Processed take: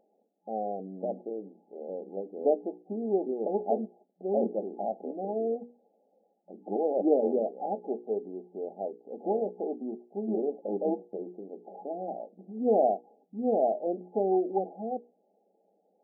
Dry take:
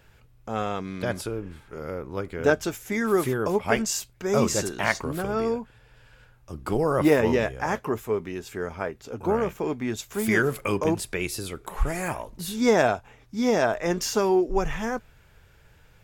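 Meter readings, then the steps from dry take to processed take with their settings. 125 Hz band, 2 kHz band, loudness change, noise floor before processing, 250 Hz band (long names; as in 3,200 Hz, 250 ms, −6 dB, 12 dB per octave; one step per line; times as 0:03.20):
below −15 dB, below −40 dB, −5.5 dB, −56 dBFS, −6.5 dB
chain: low-shelf EQ 470 Hz −10.5 dB
mains-hum notches 60/120/180/240/300/360/420/480 Hz
brick-wall band-pass 180–850 Hz
level +2 dB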